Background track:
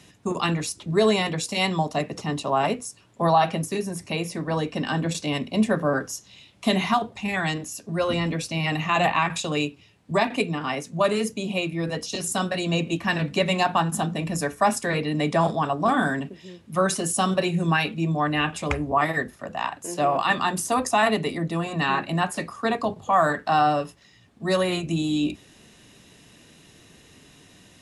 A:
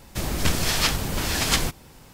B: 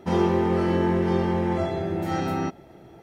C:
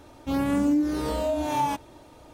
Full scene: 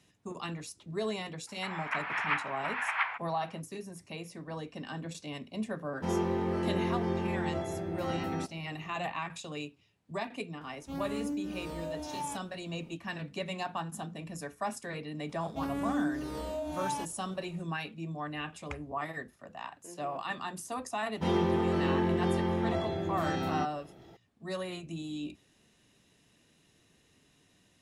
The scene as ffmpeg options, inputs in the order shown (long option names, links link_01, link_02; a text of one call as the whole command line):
ffmpeg -i bed.wav -i cue0.wav -i cue1.wav -i cue2.wav -filter_complex "[2:a]asplit=2[link_01][link_02];[3:a]asplit=2[link_03][link_04];[0:a]volume=-14.5dB[link_05];[1:a]asuperpass=centerf=1400:order=8:qfactor=0.88[link_06];[link_04]aresample=32000,aresample=44100[link_07];[link_02]equalizer=frequency=3500:width_type=o:width=0.48:gain=7[link_08];[link_06]atrim=end=2.13,asetpts=PTS-STARTPTS,volume=-1.5dB,afade=type=in:duration=0.004:curve=hsin,afade=type=out:start_time=2.126:duration=0.004:curve=hsin,adelay=1470[link_09];[link_01]atrim=end=3.02,asetpts=PTS-STARTPTS,volume=-9dB,afade=type=in:duration=0.004:curve=hsin,afade=type=out:start_time=3.016:duration=0.004:curve=hsin,adelay=5960[link_10];[link_03]atrim=end=2.33,asetpts=PTS-STARTPTS,volume=-13dB,afade=type=in:duration=0.004:curve=hsin,afade=type=out:start_time=2.326:duration=0.004:curve=hsin,adelay=10610[link_11];[link_07]atrim=end=2.33,asetpts=PTS-STARTPTS,volume=-10dB,afade=type=in:duration=0.004:curve=hsin,afade=type=out:start_time=2.326:duration=0.004:curve=hsin,adelay=15290[link_12];[link_08]atrim=end=3.02,asetpts=PTS-STARTPTS,volume=-6.5dB,afade=type=in:duration=0.004:curve=hsin,afade=type=out:start_time=3.016:duration=0.004:curve=hsin,adelay=21150[link_13];[link_05][link_09][link_10][link_11][link_12][link_13]amix=inputs=6:normalize=0" out.wav